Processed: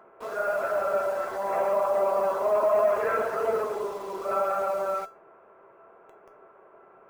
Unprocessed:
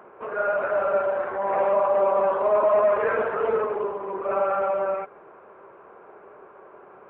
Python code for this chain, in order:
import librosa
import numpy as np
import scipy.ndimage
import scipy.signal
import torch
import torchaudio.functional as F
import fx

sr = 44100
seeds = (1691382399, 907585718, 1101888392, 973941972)

p1 = fx.quant_dither(x, sr, seeds[0], bits=6, dither='none')
p2 = x + F.gain(torch.from_numpy(p1), -7.0).numpy()
p3 = fx.comb_fb(p2, sr, f0_hz=670.0, decay_s=0.24, harmonics='all', damping=0.0, mix_pct=80)
y = F.gain(torch.from_numpy(p3), 6.0).numpy()